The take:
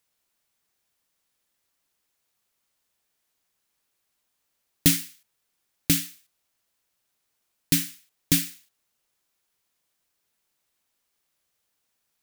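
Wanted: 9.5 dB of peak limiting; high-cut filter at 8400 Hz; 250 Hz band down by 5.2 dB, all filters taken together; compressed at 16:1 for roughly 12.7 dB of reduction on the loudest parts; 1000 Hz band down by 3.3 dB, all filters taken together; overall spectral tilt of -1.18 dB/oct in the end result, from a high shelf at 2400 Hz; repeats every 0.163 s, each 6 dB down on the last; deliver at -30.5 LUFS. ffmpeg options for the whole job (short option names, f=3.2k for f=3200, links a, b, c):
-af "lowpass=8.4k,equalizer=f=250:t=o:g=-7,equalizer=f=1k:t=o:g=-7,highshelf=f=2.4k:g=8.5,acompressor=threshold=-27dB:ratio=16,alimiter=limit=-17.5dB:level=0:latency=1,aecho=1:1:163|326|489|652|815|978:0.501|0.251|0.125|0.0626|0.0313|0.0157,volume=8dB"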